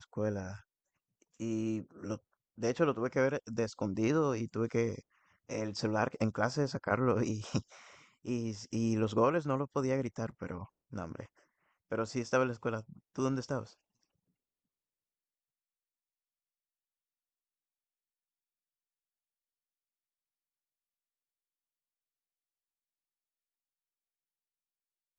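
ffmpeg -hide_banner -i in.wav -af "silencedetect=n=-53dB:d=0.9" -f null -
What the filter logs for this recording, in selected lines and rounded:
silence_start: 13.73
silence_end: 25.19 | silence_duration: 11.46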